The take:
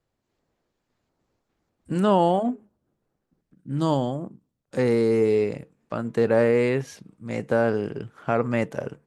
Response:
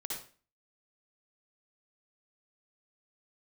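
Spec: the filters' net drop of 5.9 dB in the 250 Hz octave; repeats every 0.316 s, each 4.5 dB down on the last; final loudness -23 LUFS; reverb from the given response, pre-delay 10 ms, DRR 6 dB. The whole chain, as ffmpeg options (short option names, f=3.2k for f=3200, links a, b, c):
-filter_complex "[0:a]equalizer=f=250:t=o:g=-8,aecho=1:1:316|632|948|1264|1580|1896|2212|2528|2844:0.596|0.357|0.214|0.129|0.0772|0.0463|0.0278|0.0167|0.01,asplit=2[a][b];[1:a]atrim=start_sample=2205,adelay=10[c];[b][c]afir=irnorm=-1:irlink=0,volume=-6.5dB[d];[a][d]amix=inputs=2:normalize=0,volume=1dB"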